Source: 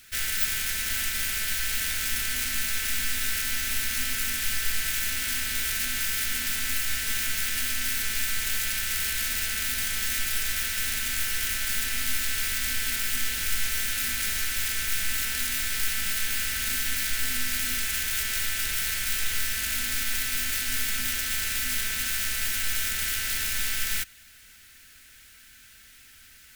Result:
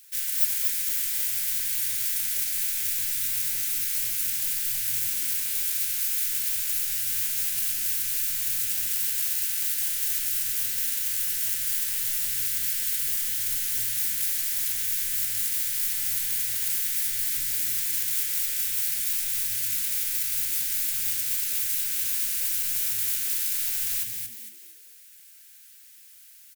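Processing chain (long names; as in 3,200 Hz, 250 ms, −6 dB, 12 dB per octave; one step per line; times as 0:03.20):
first-order pre-emphasis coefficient 0.9
on a send: echo with shifted repeats 229 ms, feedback 39%, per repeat +110 Hz, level −5 dB
on the sum: level −1 dB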